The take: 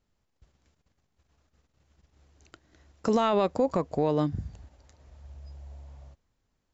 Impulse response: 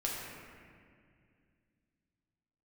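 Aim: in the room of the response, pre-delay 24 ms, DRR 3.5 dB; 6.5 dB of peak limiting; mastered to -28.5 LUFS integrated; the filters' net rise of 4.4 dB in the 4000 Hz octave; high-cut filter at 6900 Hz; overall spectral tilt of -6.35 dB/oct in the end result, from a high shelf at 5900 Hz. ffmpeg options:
-filter_complex "[0:a]lowpass=6.9k,equalizer=f=4k:t=o:g=8,highshelf=f=5.9k:g=-7,alimiter=limit=-21dB:level=0:latency=1,asplit=2[a][b];[1:a]atrim=start_sample=2205,adelay=24[c];[b][c]afir=irnorm=-1:irlink=0,volume=-7.5dB[d];[a][d]amix=inputs=2:normalize=0,volume=2.5dB"

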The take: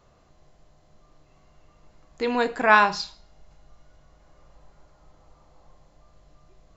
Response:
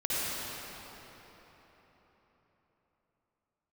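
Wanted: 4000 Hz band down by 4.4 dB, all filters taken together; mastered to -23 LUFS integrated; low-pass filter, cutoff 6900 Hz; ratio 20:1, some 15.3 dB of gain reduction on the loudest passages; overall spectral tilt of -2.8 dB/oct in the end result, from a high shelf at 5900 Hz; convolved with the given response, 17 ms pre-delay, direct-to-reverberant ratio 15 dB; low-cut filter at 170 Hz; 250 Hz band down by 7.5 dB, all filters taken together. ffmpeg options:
-filter_complex "[0:a]highpass=170,lowpass=6.9k,equalizer=f=250:t=o:g=-7,equalizer=f=4k:t=o:g=-6.5,highshelf=f=5.9k:g=4.5,acompressor=threshold=-26dB:ratio=20,asplit=2[a][b];[1:a]atrim=start_sample=2205,adelay=17[c];[b][c]afir=irnorm=-1:irlink=0,volume=-24.5dB[d];[a][d]amix=inputs=2:normalize=0,volume=10dB"

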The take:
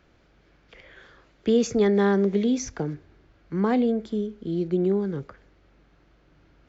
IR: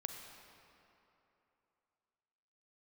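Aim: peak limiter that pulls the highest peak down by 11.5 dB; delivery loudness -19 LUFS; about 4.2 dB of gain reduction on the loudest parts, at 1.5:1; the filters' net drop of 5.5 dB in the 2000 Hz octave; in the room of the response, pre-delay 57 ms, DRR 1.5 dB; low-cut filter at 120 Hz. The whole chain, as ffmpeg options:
-filter_complex "[0:a]highpass=120,equalizer=f=2k:t=o:g=-7,acompressor=threshold=-28dB:ratio=1.5,alimiter=level_in=3dB:limit=-24dB:level=0:latency=1,volume=-3dB,asplit=2[a][b];[1:a]atrim=start_sample=2205,adelay=57[c];[b][c]afir=irnorm=-1:irlink=0,volume=0dB[d];[a][d]amix=inputs=2:normalize=0,volume=14.5dB"

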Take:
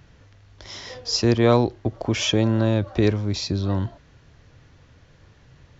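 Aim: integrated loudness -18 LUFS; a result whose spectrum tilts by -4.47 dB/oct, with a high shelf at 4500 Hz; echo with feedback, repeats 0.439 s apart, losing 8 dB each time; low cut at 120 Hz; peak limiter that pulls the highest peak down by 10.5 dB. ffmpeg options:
-af "highpass=120,highshelf=f=4.5k:g=5.5,alimiter=limit=-16dB:level=0:latency=1,aecho=1:1:439|878|1317|1756|2195:0.398|0.159|0.0637|0.0255|0.0102,volume=8.5dB"

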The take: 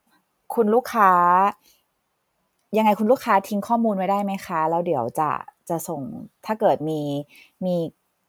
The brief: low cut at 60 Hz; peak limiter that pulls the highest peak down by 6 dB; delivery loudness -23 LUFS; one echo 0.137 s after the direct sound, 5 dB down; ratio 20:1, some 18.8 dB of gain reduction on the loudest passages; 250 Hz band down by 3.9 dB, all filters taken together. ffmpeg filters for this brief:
-af "highpass=60,equalizer=f=250:t=o:g=-5,acompressor=threshold=-31dB:ratio=20,alimiter=level_in=2.5dB:limit=-24dB:level=0:latency=1,volume=-2.5dB,aecho=1:1:137:0.562,volume=14dB"

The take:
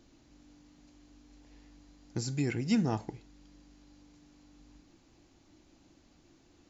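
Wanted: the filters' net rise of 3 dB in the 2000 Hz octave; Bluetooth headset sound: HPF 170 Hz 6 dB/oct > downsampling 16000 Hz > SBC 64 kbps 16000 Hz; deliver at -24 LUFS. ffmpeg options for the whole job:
-af "highpass=f=170:p=1,equalizer=f=2k:t=o:g=3.5,aresample=16000,aresample=44100,volume=10.5dB" -ar 16000 -c:a sbc -b:a 64k

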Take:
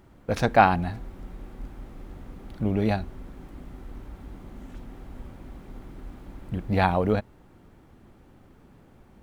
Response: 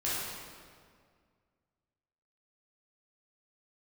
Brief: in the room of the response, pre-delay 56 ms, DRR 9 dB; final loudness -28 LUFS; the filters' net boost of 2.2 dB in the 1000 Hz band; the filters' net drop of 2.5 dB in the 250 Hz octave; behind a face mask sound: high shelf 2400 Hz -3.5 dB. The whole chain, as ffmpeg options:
-filter_complex "[0:a]equalizer=f=250:t=o:g=-3.5,equalizer=f=1k:t=o:g=4,asplit=2[a][b];[1:a]atrim=start_sample=2205,adelay=56[c];[b][c]afir=irnorm=-1:irlink=0,volume=-16.5dB[d];[a][d]amix=inputs=2:normalize=0,highshelf=f=2.4k:g=-3.5,volume=-3.5dB"

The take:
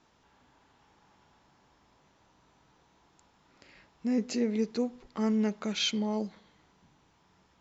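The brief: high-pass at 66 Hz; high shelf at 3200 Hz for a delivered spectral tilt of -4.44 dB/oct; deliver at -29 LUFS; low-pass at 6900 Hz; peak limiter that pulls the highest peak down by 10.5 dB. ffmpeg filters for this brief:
-af "highpass=66,lowpass=6.9k,highshelf=f=3.2k:g=5.5,volume=6dB,alimiter=limit=-20dB:level=0:latency=1"

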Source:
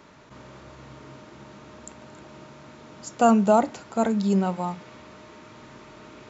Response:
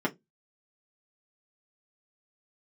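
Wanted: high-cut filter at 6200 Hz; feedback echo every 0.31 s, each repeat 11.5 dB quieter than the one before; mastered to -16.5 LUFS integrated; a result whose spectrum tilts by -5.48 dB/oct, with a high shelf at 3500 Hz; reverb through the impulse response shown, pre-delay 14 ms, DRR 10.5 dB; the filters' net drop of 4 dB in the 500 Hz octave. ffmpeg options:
-filter_complex "[0:a]lowpass=6.2k,equalizer=f=500:t=o:g=-5.5,highshelf=f=3.5k:g=-8.5,aecho=1:1:310|620|930:0.266|0.0718|0.0194,asplit=2[a][b];[1:a]atrim=start_sample=2205,adelay=14[c];[b][c]afir=irnorm=-1:irlink=0,volume=-19.5dB[d];[a][d]amix=inputs=2:normalize=0,volume=5.5dB"

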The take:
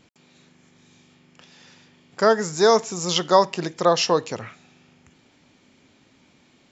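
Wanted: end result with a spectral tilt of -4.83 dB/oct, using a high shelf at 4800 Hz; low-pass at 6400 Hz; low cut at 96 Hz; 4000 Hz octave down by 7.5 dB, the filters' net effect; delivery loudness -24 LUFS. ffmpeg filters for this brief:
-af "highpass=96,lowpass=6.4k,equalizer=f=4k:t=o:g=-7.5,highshelf=f=4.8k:g=-4,volume=-3dB"

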